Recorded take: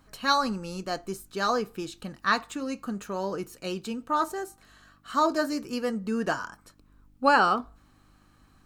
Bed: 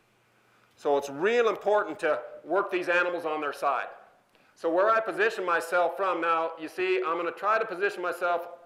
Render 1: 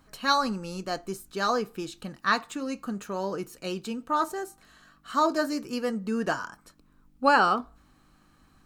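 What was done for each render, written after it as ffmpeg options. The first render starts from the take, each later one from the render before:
ffmpeg -i in.wav -af "bandreject=frequency=50:width_type=h:width=4,bandreject=frequency=100:width_type=h:width=4" out.wav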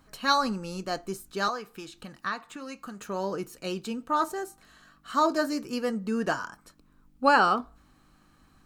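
ffmpeg -i in.wav -filter_complex "[0:a]asettb=1/sr,asplit=3[link_01][link_02][link_03];[link_01]atrim=end=1.484[link_04];[link_02]atrim=start=1.48:end=3.01,asetpts=PTS-STARTPTS,afade=type=in:duration=0.004:curve=qsin,afade=type=out:start_time=1.526:duration=0.004:curve=qsin,acrossover=split=790|2800[link_05][link_06][link_07];[link_05]acompressor=threshold=-41dB:ratio=4[link_08];[link_06]acompressor=threshold=-31dB:ratio=4[link_09];[link_07]acompressor=threshold=-48dB:ratio=4[link_10];[link_08][link_09][link_10]amix=inputs=3:normalize=0[link_11];[link_03]atrim=start=3.006[link_12];[link_04][link_11]acrossfade=duration=0.004:curve1=hsin:curve2=qsin[link_13];[link_13][link_12]acrossfade=duration=0.004:curve1=qsin:curve2=hsin" out.wav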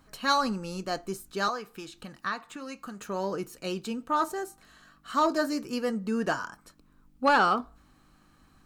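ffmpeg -i in.wav -af "asoftclip=type=tanh:threshold=-13dB" out.wav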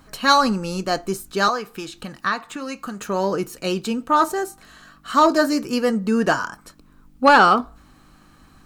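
ffmpeg -i in.wav -af "volume=9.5dB" out.wav

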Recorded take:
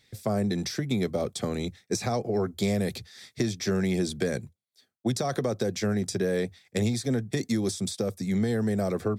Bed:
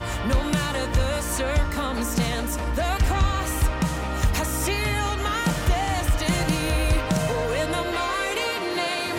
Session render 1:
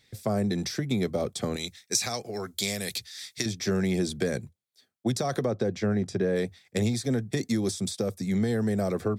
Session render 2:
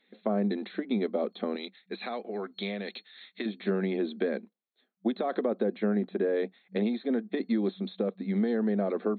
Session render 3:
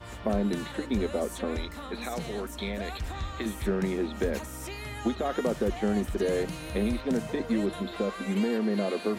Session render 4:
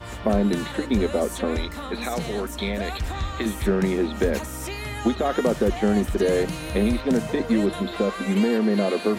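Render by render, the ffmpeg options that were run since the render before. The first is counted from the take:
ffmpeg -i in.wav -filter_complex "[0:a]asettb=1/sr,asplit=3[link_01][link_02][link_03];[link_01]atrim=end=1.564[link_04];[link_02]atrim=start=1.56:end=3.46,asetpts=PTS-STARTPTS,afade=type=in:duration=0.004:curve=qsin,afade=type=out:start_time=1.896:duration=0.004:curve=qsin,tiltshelf=frequency=1400:gain=-9.5[link_05];[link_03]atrim=start=3.456[link_06];[link_04][link_05]acrossfade=duration=0.004:curve1=hsin:curve2=qsin[link_07];[link_07][link_06]acrossfade=duration=0.004:curve1=qsin:curve2=hsin,asplit=3[link_08][link_09][link_10];[link_08]afade=type=out:start_time=5.44:duration=0.02[link_11];[link_09]aemphasis=mode=reproduction:type=75fm,afade=type=in:start_time=5.44:duration=0.02,afade=type=out:start_time=6.35:duration=0.02[link_12];[link_10]afade=type=in:start_time=6.35:duration=0.02[link_13];[link_11][link_12][link_13]amix=inputs=3:normalize=0" out.wav
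ffmpeg -i in.wav -af "afftfilt=real='re*between(b*sr/4096,190,4300)':imag='im*between(b*sr/4096,190,4300)':win_size=4096:overlap=0.75,highshelf=frequency=2300:gain=-9.5" out.wav
ffmpeg -i in.wav -i bed.wav -filter_complex "[1:a]volume=-14dB[link_01];[0:a][link_01]amix=inputs=2:normalize=0" out.wav
ffmpeg -i in.wav -af "volume=6.5dB" out.wav

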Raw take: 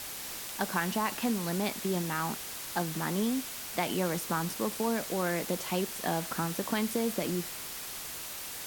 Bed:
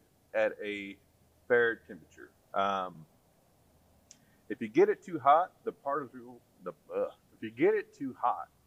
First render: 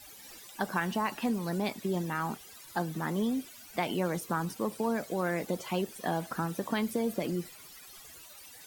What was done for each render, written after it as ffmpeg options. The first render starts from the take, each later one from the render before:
ffmpeg -i in.wav -af "afftdn=noise_reduction=16:noise_floor=-41" out.wav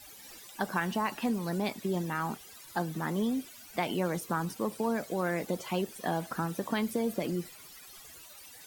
ffmpeg -i in.wav -af anull out.wav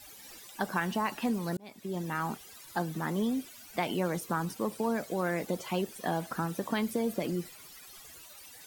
ffmpeg -i in.wav -filter_complex "[0:a]asplit=2[link_01][link_02];[link_01]atrim=end=1.57,asetpts=PTS-STARTPTS,afade=type=out:start_time=1.566:duration=0.004:curve=hsin[link_03];[link_02]atrim=start=1.57,asetpts=PTS-STARTPTS,afade=type=in:duration=0.58[link_04];[link_03][link_04]concat=n=2:v=0:a=1" out.wav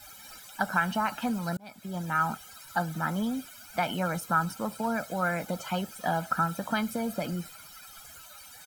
ffmpeg -i in.wav -af "equalizer=frequency=1300:width_type=o:width=0.22:gain=14.5,aecho=1:1:1.3:0.68" out.wav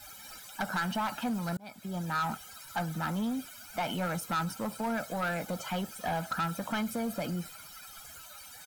ffmpeg -i in.wav -af "asoftclip=type=tanh:threshold=-26dB" out.wav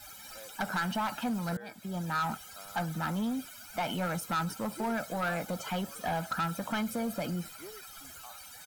ffmpeg -i in.wav -i bed.wav -filter_complex "[1:a]volume=-22dB[link_01];[0:a][link_01]amix=inputs=2:normalize=0" out.wav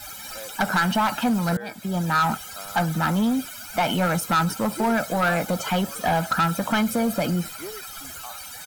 ffmpeg -i in.wav -af "volume=10.5dB" out.wav

